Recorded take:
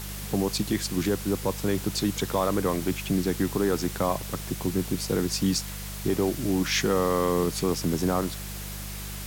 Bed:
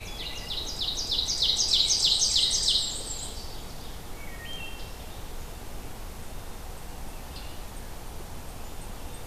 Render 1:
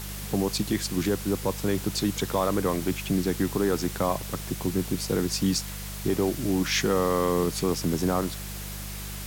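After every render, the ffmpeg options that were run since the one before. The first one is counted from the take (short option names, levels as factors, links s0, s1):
-af anull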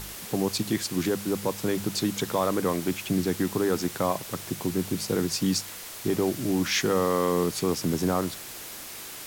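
-af "bandreject=f=50:t=h:w=4,bandreject=f=100:t=h:w=4,bandreject=f=150:t=h:w=4,bandreject=f=200:t=h:w=4"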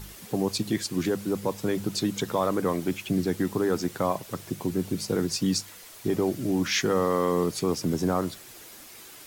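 -af "afftdn=nr=8:nf=-40"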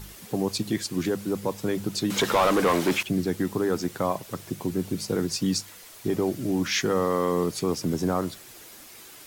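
-filter_complex "[0:a]asettb=1/sr,asplit=3[s0][s1][s2];[s0]atrim=end=2.104[s3];[s1]atrim=start=2.1:end=3.03,asetpts=PTS-STARTPTS,afade=t=in:d=0.004:c=qsin,afade=t=out:st=0.926:d=0.004:c=qsin,asplit=2[s4][s5];[s5]highpass=f=720:p=1,volume=14.1,asoftclip=type=tanh:threshold=0.237[s6];[s4][s6]amix=inputs=2:normalize=0,lowpass=f=3900:p=1,volume=0.501[s7];[s2]atrim=start=3.026[s8];[s3][s7]acrossfade=d=0.004:c1=hsin:c2=qsin[s9];[s9][s8]acrossfade=d=0.004:c1=qsin:c2=hsin"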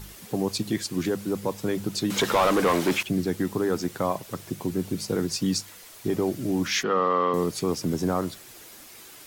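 -filter_complex "[0:a]asettb=1/sr,asplit=3[s0][s1][s2];[s0]atrim=end=6.834[s3];[s1]atrim=start=6.83:end=7.34,asetpts=PTS-STARTPTS,afade=t=in:d=0.004:c=qsin,afade=t=out:st=0.506:d=0.004:c=qsin,highpass=220,equalizer=f=320:t=q:w=4:g=-5,equalizer=f=1200:t=q:w=4:g=8,equalizer=f=2800:t=q:w=4:g=7,lowpass=f=4100:w=0.5412,lowpass=f=4100:w=1.3066[s4];[s2]atrim=start=7.336[s5];[s3][s4]acrossfade=d=0.004:c1=hsin:c2=qsin[s6];[s6][s5]acrossfade=d=0.004:c1=qsin:c2=hsin"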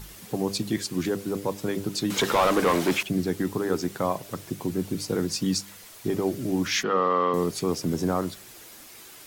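-af "bandreject=f=99.16:t=h:w=4,bandreject=f=198.32:t=h:w=4,bandreject=f=297.48:t=h:w=4,bandreject=f=396.64:t=h:w=4,bandreject=f=495.8:t=h:w=4,bandreject=f=594.96:t=h:w=4,bandreject=f=694.12:t=h:w=4"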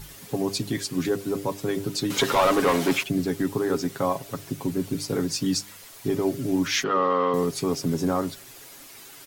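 -af "aecho=1:1:7.3:0.53"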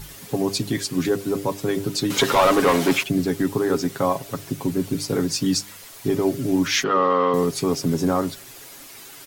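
-af "volume=1.5"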